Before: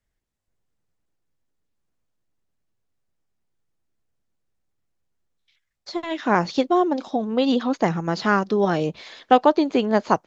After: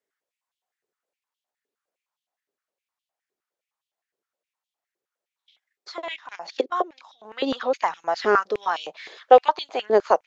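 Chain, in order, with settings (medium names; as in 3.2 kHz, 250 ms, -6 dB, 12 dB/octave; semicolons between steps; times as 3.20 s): 6.16–7.25 s: level held to a coarse grid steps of 17 dB; step-sequenced high-pass 9.7 Hz 400–3200 Hz; trim -4 dB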